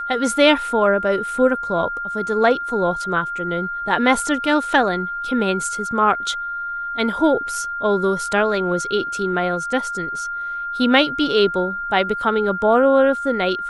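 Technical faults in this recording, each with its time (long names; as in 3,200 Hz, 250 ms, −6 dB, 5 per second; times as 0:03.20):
whistle 1,400 Hz −24 dBFS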